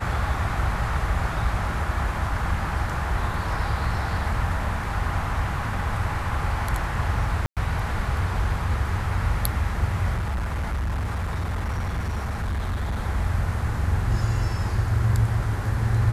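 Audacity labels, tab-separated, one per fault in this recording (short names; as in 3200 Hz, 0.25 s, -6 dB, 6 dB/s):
7.460000	7.570000	gap 0.107 s
10.160000	12.960000	clipped -23 dBFS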